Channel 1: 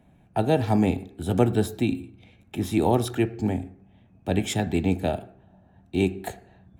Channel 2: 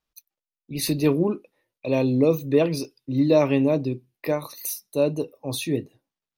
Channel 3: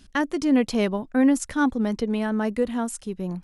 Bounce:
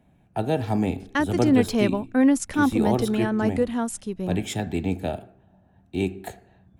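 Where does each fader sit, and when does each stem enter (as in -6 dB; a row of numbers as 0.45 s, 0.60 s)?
-2.5 dB, mute, +0.5 dB; 0.00 s, mute, 1.00 s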